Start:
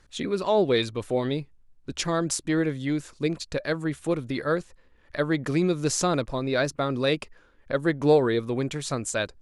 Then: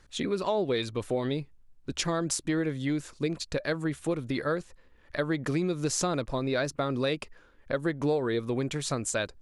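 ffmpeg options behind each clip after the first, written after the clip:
ffmpeg -i in.wav -af "acompressor=threshold=-25dB:ratio=4" out.wav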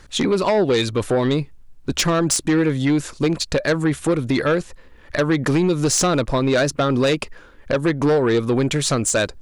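ffmpeg -i in.wav -af "aeval=exprs='0.237*sin(PI/2*2.82*val(0)/0.237)':channel_layout=same" out.wav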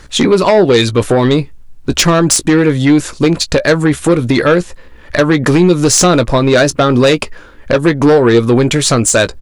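ffmpeg -i in.wav -filter_complex "[0:a]asplit=2[link_01][link_02];[link_02]adelay=17,volume=-12.5dB[link_03];[link_01][link_03]amix=inputs=2:normalize=0,volume=8.5dB" out.wav

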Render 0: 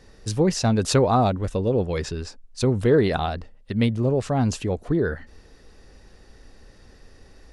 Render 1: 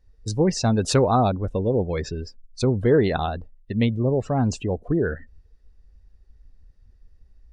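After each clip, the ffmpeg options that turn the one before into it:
ffmpeg -i in.wav -af "afftdn=noise_reduction=23:noise_floor=-37" out.wav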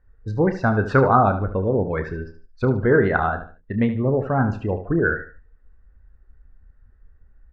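ffmpeg -i in.wav -filter_complex "[0:a]lowpass=frequency=1500:width_type=q:width=4,asplit=2[link_01][link_02];[link_02]adelay=30,volume=-11dB[link_03];[link_01][link_03]amix=inputs=2:normalize=0,aecho=1:1:74|148|222:0.282|0.0874|0.0271" out.wav

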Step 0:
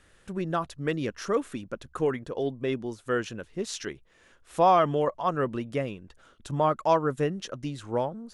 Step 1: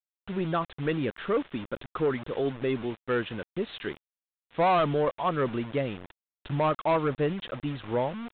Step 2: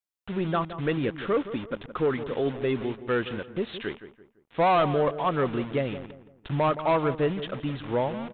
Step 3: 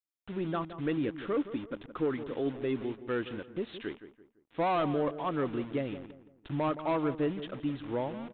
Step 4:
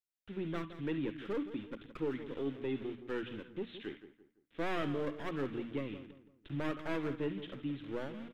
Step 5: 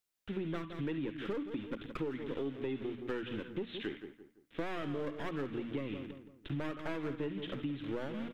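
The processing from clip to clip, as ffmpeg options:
ffmpeg -i in.wav -af "acrusher=bits=6:mix=0:aa=0.000001,aresample=8000,asoftclip=type=tanh:threshold=-20.5dB,aresample=44100,volume=2dB" out.wav
ffmpeg -i in.wav -filter_complex "[0:a]asplit=2[link_01][link_02];[link_02]adelay=169,lowpass=frequency=1600:poles=1,volume=-12dB,asplit=2[link_03][link_04];[link_04]adelay=169,lowpass=frequency=1600:poles=1,volume=0.37,asplit=2[link_05][link_06];[link_06]adelay=169,lowpass=frequency=1600:poles=1,volume=0.37,asplit=2[link_07][link_08];[link_08]adelay=169,lowpass=frequency=1600:poles=1,volume=0.37[link_09];[link_01][link_03][link_05][link_07][link_09]amix=inputs=5:normalize=0,volume=1.5dB" out.wav
ffmpeg -i in.wav -af "equalizer=frequency=300:width_type=o:width=0.47:gain=8,volume=-8dB" out.wav
ffmpeg -i in.wav -filter_complex "[0:a]bandreject=frequency=60:width_type=h:width=6,bandreject=frequency=120:width_type=h:width=6,bandreject=frequency=180:width_type=h:width=6,bandreject=frequency=240:width_type=h:width=6,bandreject=frequency=300:width_type=h:width=6,acrossover=split=240|600|1300[link_01][link_02][link_03][link_04];[link_03]aeval=exprs='abs(val(0))':channel_layout=same[link_05];[link_04]aecho=1:1:50|70:0.282|0.316[link_06];[link_01][link_02][link_05][link_06]amix=inputs=4:normalize=0,volume=-4dB" out.wav
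ffmpeg -i in.wav -af "acompressor=threshold=-42dB:ratio=6,volume=7.5dB" out.wav

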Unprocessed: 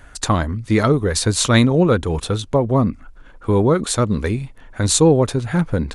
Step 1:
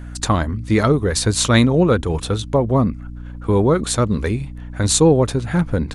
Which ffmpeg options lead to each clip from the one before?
ffmpeg -i in.wav -af "aeval=exprs='val(0)+0.0282*(sin(2*PI*60*n/s)+sin(2*PI*2*60*n/s)/2+sin(2*PI*3*60*n/s)/3+sin(2*PI*4*60*n/s)/4+sin(2*PI*5*60*n/s)/5)':channel_layout=same" out.wav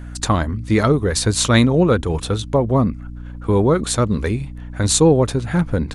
ffmpeg -i in.wav -af anull out.wav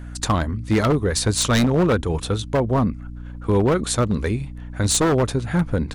ffmpeg -i in.wav -af "aeval=exprs='0.335*(abs(mod(val(0)/0.335+3,4)-2)-1)':channel_layout=same,volume=-2dB" out.wav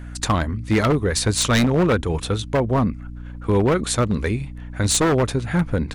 ffmpeg -i in.wav -af "equalizer=frequency=2200:width_type=o:width=0.9:gain=3.5" out.wav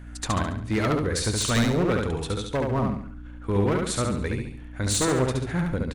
ffmpeg -i in.wav -af "aecho=1:1:70|140|210|280|350:0.708|0.283|0.113|0.0453|0.0181,volume=-7dB" out.wav

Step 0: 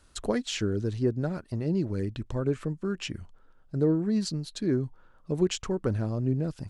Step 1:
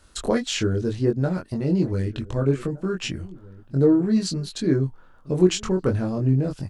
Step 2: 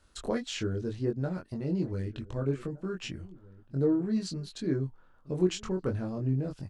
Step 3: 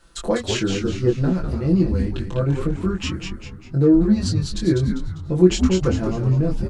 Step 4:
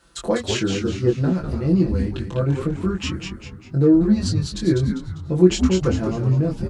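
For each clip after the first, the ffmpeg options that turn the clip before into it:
ffmpeg -i in.wav -filter_complex "[0:a]asplit=2[link_01][link_02];[link_02]adelay=22,volume=-3dB[link_03];[link_01][link_03]amix=inputs=2:normalize=0,asplit=2[link_04][link_05];[link_05]adelay=1516,volume=-20dB,highshelf=frequency=4000:gain=-34.1[link_06];[link_04][link_06]amix=inputs=2:normalize=0,volume=4.5dB" out.wav
ffmpeg -i in.wav -af "highshelf=frequency=8200:gain=-6,volume=-9dB" out.wav
ffmpeg -i in.wav -filter_complex "[0:a]aecho=1:1:5.9:0.89,asplit=2[link_01][link_02];[link_02]asplit=5[link_03][link_04][link_05][link_06][link_07];[link_03]adelay=199,afreqshift=-110,volume=-5dB[link_08];[link_04]adelay=398,afreqshift=-220,volume=-12.7dB[link_09];[link_05]adelay=597,afreqshift=-330,volume=-20.5dB[link_10];[link_06]adelay=796,afreqshift=-440,volume=-28.2dB[link_11];[link_07]adelay=995,afreqshift=-550,volume=-36dB[link_12];[link_08][link_09][link_10][link_11][link_12]amix=inputs=5:normalize=0[link_13];[link_01][link_13]amix=inputs=2:normalize=0,volume=8dB" out.wav
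ffmpeg -i in.wav -af "highpass=51" out.wav

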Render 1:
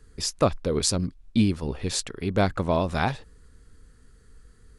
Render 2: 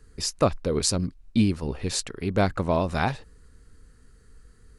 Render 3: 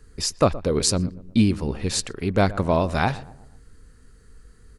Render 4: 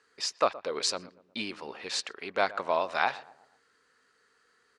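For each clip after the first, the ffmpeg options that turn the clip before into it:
ffmpeg -i in.wav -af "bandreject=frequency=3400:width=15" out.wav
ffmpeg -i in.wav -filter_complex "[0:a]asplit=2[link_01][link_02];[link_02]adelay=121,lowpass=frequency=1100:poles=1,volume=-17dB,asplit=2[link_03][link_04];[link_04]adelay=121,lowpass=frequency=1100:poles=1,volume=0.51,asplit=2[link_05][link_06];[link_06]adelay=121,lowpass=frequency=1100:poles=1,volume=0.51,asplit=2[link_07][link_08];[link_08]adelay=121,lowpass=frequency=1100:poles=1,volume=0.51[link_09];[link_01][link_03][link_05][link_07][link_09]amix=inputs=5:normalize=0,volume=3dB" out.wav
ffmpeg -i in.wav -af "highpass=740,lowpass=4600,volume=-1.5dB" out.wav

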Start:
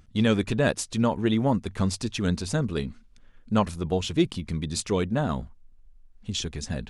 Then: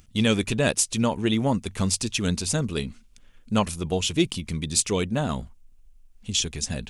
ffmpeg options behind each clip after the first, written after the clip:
ffmpeg -i in.wav -af "aexciter=amount=2.7:drive=2.4:freq=2300" out.wav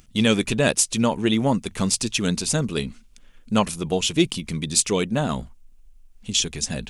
ffmpeg -i in.wav -af "equalizer=frequency=87:width_type=o:width=0.42:gain=-12.5,volume=3dB" out.wav

